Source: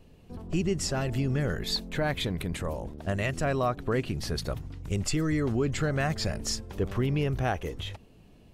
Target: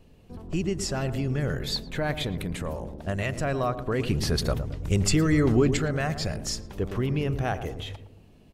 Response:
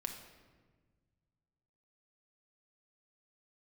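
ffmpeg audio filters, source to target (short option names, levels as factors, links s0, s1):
-filter_complex "[0:a]asettb=1/sr,asplit=3[s0][s1][s2];[s0]atrim=end=4.004[s3];[s1]atrim=start=4:end=5.77,asetpts=PTS-STARTPTS,afade=t=in:d=0.004:c=qsin,afade=t=out:st=1.766:d=0.004:c=qsin,acontrast=47[s4];[s2]atrim=start=5.766[s5];[s3][s4]acrossfade=d=0.004:c1=hsin:c2=qsin[s6];[s6][s5]acrossfade=d=0.004:c1=qsin:c2=hsin,asplit=2[s7][s8];[s8]adelay=112,lowpass=f=820:p=1,volume=0.355,asplit=2[s9][s10];[s10]adelay=112,lowpass=f=820:p=1,volume=0.54,asplit=2[s11][s12];[s12]adelay=112,lowpass=f=820:p=1,volume=0.54,asplit=2[s13][s14];[s14]adelay=112,lowpass=f=820:p=1,volume=0.54,asplit=2[s15][s16];[s16]adelay=112,lowpass=f=820:p=1,volume=0.54,asplit=2[s17][s18];[s18]adelay=112,lowpass=f=820:p=1,volume=0.54[s19];[s7][s9][s11][s13][s15][s17][s19]amix=inputs=7:normalize=0"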